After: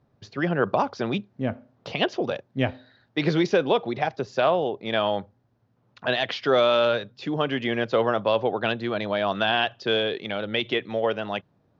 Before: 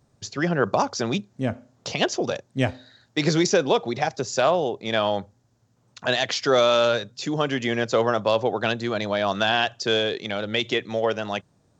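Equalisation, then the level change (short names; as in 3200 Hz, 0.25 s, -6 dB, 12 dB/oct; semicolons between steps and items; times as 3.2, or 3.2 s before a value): air absorption 290 m; low shelf 99 Hz -6 dB; dynamic EQ 3100 Hz, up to +5 dB, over -45 dBFS, Q 1.8; 0.0 dB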